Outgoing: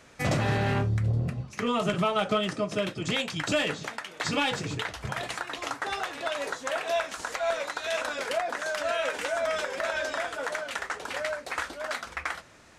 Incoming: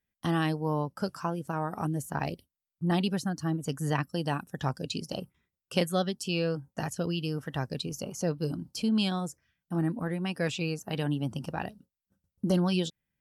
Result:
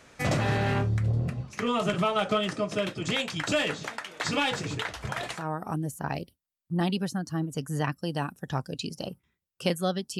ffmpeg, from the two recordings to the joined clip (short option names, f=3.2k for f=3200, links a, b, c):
-filter_complex "[0:a]apad=whole_dur=10.19,atrim=end=10.19,atrim=end=5.48,asetpts=PTS-STARTPTS[a];[1:a]atrim=start=1.39:end=6.3,asetpts=PTS-STARTPTS[b];[a][b]acrossfade=d=0.2:c1=tri:c2=tri"